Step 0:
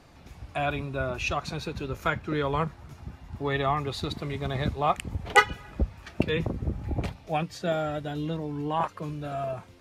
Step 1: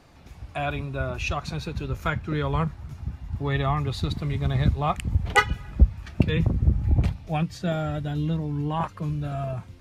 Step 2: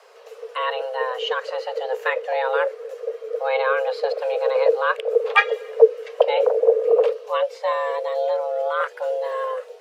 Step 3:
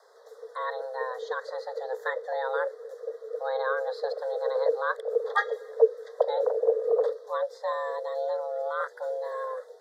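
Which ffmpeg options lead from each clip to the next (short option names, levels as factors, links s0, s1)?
-af "asubboost=boost=3.5:cutoff=210"
-filter_complex "[0:a]acrossover=split=3400[s0][s1];[s1]acompressor=threshold=0.00178:ratio=4:attack=1:release=60[s2];[s0][s2]amix=inputs=2:normalize=0,afreqshift=390,volume=1.5"
-af "asuperstop=centerf=2600:order=12:qfactor=1.8,volume=0.422"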